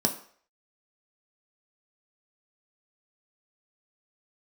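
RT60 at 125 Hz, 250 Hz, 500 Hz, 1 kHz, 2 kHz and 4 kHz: 0.35 s, 0.40 s, 0.55 s, 0.55 s, 0.55 s, 0.50 s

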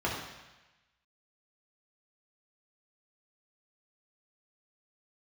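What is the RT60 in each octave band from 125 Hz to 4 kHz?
1.1 s, 0.95 s, 1.0 s, 1.1 s, 1.2 s, 1.2 s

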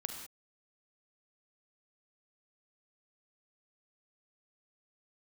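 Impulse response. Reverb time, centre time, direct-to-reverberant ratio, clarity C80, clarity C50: no single decay rate, 32 ms, 4.0 dB, 6.5 dB, 4.5 dB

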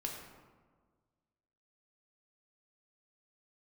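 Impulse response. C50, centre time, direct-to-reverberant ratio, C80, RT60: 3.5 dB, 52 ms, -0.5 dB, 5.0 dB, 1.5 s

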